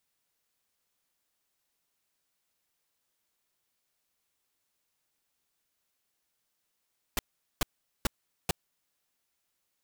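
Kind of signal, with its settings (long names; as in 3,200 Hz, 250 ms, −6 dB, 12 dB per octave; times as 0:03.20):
noise bursts pink, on 0.02 s, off 0.42 s, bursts 4, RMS −26.5 dBFS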